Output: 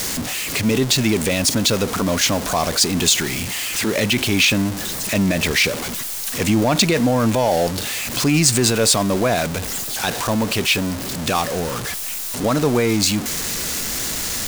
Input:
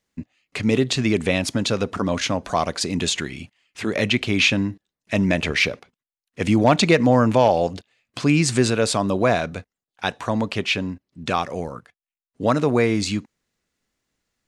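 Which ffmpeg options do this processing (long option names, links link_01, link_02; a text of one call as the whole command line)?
ffmpeg -i in.wav -af "aeval=exprs='val(0)+0.5*0.075*sgn(val(0))':channel_layout=same,alimiter=limit=-8.5dB:level=0:latency=1:release=11,bass=frequency=250:gain=0,treble=frequency=4000:gain=8" out.wav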